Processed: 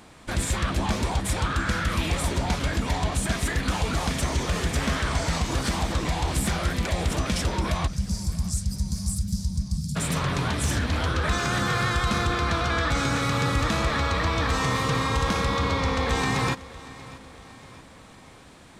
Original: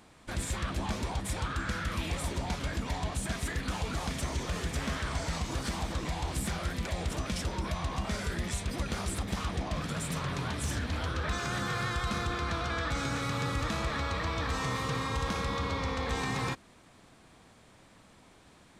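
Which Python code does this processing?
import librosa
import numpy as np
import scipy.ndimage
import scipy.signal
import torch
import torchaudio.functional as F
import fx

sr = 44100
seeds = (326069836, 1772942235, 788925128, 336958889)

y = fx.cheby1_bandstop(x, sr, low_hz=200.0, high_hz=4800.0, order=4, at=(7.86, 9.95), fade=0.02)
y = fx.echo_feedback(y, sr, ms=636, feedback_pct=52, wet_db=-19.0)
y = y * librosa.db_to_amplitude(8.0)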